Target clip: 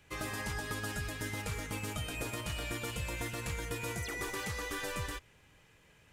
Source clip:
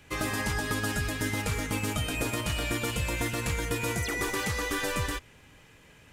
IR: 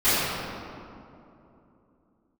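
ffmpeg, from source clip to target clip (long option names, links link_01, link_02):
-af "equalizer=frequency=260:width=3.5:gain=-4.5,volume=-7.5dB"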